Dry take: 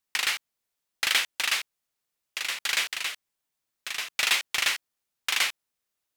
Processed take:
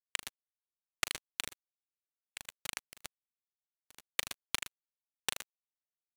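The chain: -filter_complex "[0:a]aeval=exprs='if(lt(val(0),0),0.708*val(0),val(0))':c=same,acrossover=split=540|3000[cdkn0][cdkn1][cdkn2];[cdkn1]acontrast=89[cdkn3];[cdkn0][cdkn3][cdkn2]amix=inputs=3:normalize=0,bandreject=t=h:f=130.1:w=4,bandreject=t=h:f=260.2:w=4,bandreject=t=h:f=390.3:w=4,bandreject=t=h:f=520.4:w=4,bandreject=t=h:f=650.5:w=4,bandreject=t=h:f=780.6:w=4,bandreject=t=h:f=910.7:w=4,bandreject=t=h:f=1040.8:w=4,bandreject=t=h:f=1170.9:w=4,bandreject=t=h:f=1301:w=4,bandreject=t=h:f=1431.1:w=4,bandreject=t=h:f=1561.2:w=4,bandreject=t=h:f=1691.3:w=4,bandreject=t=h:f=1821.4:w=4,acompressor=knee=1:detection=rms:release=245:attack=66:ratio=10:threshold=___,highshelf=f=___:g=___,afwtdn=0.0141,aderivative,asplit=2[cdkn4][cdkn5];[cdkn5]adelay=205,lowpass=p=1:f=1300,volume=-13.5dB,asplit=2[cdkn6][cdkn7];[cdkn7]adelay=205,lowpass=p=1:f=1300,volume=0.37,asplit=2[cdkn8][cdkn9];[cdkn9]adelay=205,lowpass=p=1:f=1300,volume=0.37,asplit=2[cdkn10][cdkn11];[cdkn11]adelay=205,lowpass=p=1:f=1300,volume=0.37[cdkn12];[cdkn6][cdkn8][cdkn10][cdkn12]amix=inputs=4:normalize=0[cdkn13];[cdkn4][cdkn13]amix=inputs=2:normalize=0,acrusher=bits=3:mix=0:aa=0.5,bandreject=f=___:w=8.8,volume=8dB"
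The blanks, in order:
-25dB, 2500, -3.5, 5100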